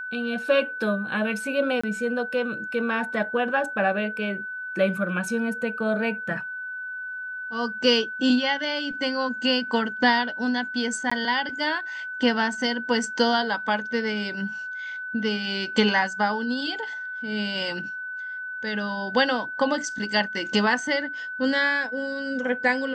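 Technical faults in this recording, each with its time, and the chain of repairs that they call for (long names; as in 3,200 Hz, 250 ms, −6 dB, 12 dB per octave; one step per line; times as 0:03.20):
whistle 1,500 Hz −31 dBFS
0:01.81–0:01.83: drop-out 25 ms
0:11.10–0:11.12: drop-out 15 ms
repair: notch filter 1,500 Hz, Q 30
repair the gap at 0:01.81, 25 ms
repair the gap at 0:11.10, 15 ms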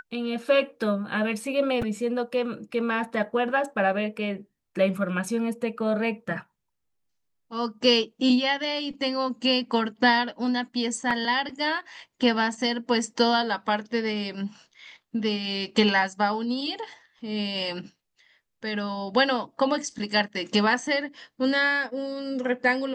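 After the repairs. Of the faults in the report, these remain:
none of them is left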